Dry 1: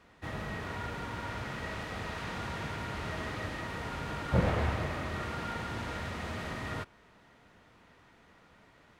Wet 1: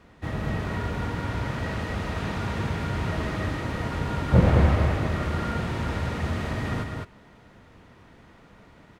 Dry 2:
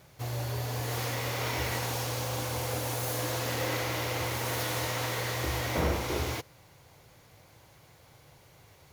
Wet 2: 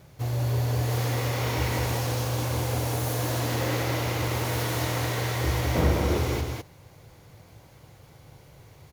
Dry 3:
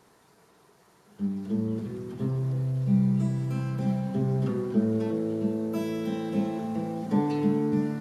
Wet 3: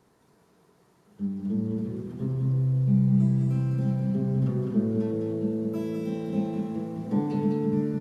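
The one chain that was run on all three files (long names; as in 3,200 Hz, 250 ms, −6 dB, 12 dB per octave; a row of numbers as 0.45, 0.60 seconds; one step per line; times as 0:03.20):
low-shelf EQ 460 Hz +8 dB
on a send: single-tap delay 206 ms −4 dB
on the sum: loudness normalisation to −27 LKFS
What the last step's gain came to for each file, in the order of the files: +3.0, −0.5, −7.5 decibels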